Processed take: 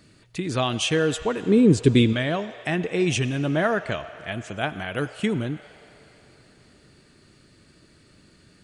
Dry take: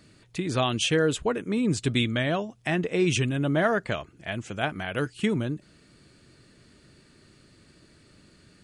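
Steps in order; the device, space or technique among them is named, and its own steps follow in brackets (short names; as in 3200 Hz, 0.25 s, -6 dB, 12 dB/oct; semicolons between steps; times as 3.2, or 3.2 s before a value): 1.43–2.13 resonant low shelf 600 Hz +6.5 dB, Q 3; filtered reverb send (on a send: HPF 520 Hz 24 dB/oct + LPF 6200 Hz 12 dB/oct + reverb RT60 3.9 s, pre-delay 72 ms, DRR 12.5 dB); on the sum: gain +1 dB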